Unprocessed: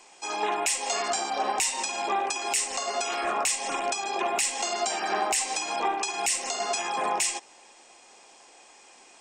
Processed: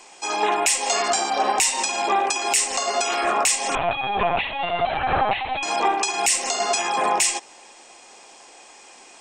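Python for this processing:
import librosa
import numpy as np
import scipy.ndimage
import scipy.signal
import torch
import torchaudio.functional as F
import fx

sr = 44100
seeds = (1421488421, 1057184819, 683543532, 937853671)

y = fx.lpc_vocoder(x, sr, seeds[0], excitation='pitch_kept', order=16, at=(3.75, 5.63))
y = F.gain(torch.from_numpy(y), 6.5).numpy()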